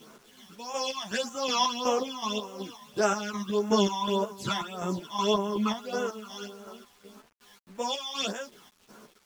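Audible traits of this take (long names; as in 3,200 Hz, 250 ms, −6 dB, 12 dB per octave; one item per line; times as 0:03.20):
phaser sweep stages 12, 1.7 Hz, lowest notch 430–4,300 Hz
chopped level 2.7 Hz, depth 60%, duty 45%
a quantiser's noise floor 10 bits, dither none
a shimmering, thickened sound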